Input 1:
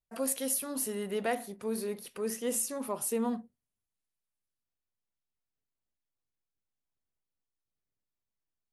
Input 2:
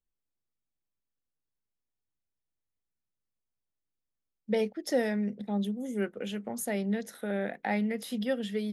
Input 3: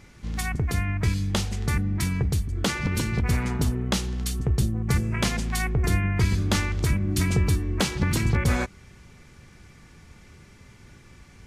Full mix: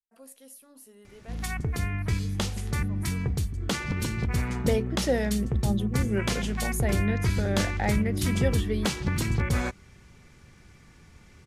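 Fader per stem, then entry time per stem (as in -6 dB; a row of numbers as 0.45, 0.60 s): -17.5, +2.0, -3.5 dB; 0.00, 0.15, 1.05 s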